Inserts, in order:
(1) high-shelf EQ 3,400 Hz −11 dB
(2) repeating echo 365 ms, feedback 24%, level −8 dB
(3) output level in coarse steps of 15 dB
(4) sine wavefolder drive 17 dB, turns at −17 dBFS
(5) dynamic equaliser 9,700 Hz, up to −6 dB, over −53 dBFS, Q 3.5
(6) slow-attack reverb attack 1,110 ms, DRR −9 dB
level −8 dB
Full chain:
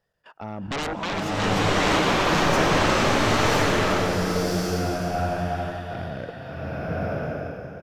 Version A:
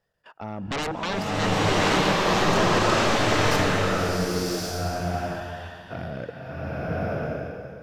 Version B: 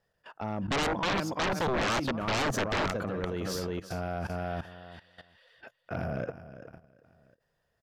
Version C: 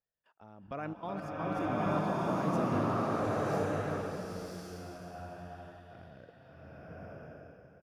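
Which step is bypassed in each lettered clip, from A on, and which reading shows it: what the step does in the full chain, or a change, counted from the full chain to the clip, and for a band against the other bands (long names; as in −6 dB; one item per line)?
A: 2, change in momentary loudness spread +2 LU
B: 6, change in crest factor −7.5 dB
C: 4, 4 kHz band −14.0 dB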